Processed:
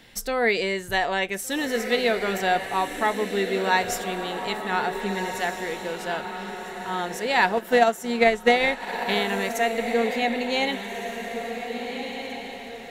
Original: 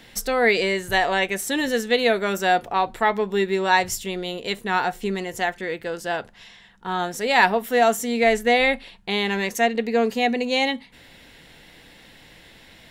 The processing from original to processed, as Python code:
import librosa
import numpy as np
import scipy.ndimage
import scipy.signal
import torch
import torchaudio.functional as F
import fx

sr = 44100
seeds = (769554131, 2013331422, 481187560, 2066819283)

y = fx.echo_diffused(x, sr, ms=1578, feedback_pct=40, wet_db=-7)
y = fx.transient(y, sr, attack_db=8, sustain_db=-7, at=(7.57, 9.28))
y = y * librosa.db_to_amplitude(-3.5)